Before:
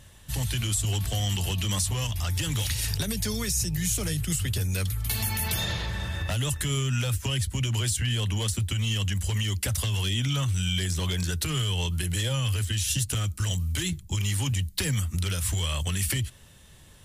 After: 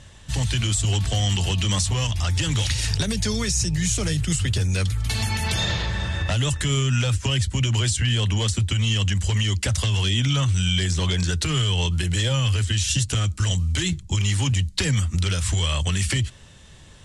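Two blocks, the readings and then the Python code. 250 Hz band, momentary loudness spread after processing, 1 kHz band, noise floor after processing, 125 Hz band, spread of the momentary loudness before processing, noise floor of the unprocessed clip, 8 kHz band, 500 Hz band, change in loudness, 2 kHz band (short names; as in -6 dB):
+5.5 dB, 3 LU, +5.5 dB, -46 dBFS, +5.5 dB, 3 LU, -51 dBFS, +3.0 dB, +5.5 dB, +5.0 dB, +5.5 dB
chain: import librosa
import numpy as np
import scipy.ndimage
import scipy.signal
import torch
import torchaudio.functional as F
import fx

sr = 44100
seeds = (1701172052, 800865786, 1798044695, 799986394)

y = scipy.signal.sosfilt(scipy.signal.butter(4, 8100.0, 'lowpass', fs=sr, output='sos'), x)
y = y * 10.0 ** (5.5 / 20.0)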